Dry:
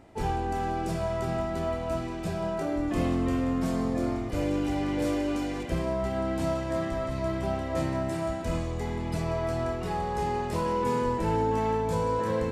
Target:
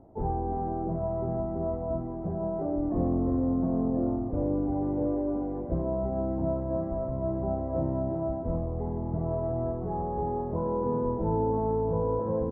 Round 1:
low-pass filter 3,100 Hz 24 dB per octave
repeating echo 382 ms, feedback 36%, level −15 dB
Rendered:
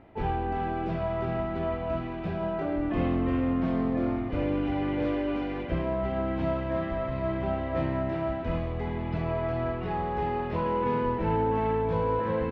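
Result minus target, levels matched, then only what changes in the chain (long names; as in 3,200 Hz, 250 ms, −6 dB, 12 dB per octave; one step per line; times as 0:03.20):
1,000 Hz band +3.0 dB
change: low-pass filter 860 Hz 24 dB per octave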